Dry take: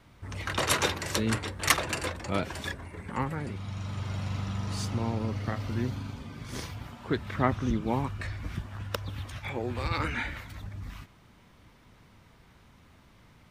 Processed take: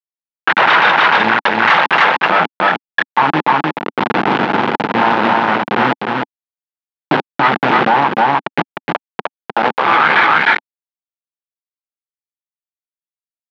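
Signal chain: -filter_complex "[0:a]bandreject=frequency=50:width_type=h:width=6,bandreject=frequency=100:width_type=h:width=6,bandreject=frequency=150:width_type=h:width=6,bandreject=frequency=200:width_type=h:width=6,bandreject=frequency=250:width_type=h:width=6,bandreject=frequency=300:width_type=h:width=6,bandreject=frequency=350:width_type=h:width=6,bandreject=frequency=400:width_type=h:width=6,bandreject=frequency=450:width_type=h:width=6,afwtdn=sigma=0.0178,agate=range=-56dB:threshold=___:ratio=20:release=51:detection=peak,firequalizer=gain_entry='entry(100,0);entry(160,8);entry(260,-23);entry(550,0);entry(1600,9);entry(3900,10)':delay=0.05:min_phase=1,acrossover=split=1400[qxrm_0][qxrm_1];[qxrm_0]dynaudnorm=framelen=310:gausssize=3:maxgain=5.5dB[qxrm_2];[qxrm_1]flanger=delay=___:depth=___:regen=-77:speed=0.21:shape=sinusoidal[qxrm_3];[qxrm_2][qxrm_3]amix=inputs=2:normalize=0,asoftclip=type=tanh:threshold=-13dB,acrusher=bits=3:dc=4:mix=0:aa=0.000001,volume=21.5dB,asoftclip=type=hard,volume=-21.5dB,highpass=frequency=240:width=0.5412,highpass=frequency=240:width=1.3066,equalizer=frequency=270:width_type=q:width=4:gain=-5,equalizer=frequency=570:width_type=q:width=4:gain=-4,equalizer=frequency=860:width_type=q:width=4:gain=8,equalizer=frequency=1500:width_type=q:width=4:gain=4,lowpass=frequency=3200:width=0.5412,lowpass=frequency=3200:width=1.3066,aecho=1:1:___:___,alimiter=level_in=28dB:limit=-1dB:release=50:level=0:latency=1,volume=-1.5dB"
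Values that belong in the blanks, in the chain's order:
-37dB, 8.8, 6.7, 305, 0.596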